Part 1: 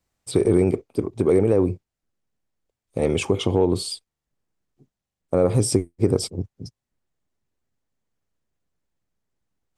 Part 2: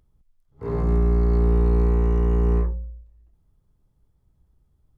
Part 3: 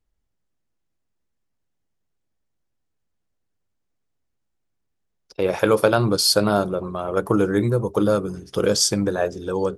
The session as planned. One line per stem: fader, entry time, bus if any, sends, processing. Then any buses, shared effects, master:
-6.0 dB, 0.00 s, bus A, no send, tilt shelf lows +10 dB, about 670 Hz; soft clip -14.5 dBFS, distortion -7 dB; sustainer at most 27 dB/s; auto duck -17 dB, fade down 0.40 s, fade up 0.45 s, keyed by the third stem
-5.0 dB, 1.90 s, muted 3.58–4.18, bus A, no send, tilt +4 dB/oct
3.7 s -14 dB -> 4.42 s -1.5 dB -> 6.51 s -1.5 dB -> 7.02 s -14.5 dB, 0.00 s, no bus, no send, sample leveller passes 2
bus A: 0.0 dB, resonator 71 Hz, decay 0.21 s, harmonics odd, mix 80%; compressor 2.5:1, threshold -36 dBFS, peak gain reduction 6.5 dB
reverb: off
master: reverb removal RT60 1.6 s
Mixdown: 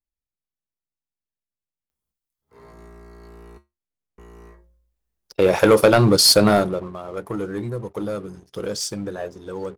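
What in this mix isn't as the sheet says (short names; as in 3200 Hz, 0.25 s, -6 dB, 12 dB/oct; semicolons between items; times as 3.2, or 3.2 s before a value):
stem 1: muted; master: missing reverb removal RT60 1.6 s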